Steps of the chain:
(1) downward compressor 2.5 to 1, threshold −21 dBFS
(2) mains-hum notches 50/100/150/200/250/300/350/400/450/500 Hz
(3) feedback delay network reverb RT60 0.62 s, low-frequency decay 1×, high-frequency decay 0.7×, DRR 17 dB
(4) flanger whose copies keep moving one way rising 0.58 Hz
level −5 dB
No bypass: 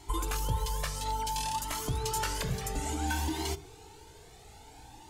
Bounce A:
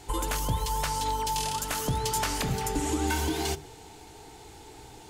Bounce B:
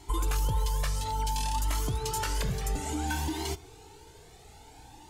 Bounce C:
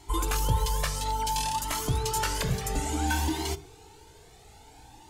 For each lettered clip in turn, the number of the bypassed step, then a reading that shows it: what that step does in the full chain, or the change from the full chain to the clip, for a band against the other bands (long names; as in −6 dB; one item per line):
4, 250 Hz band +2.0 dB
2, 125 Hz band +3.0 dB
1, change in momentary loudness spread −17 LU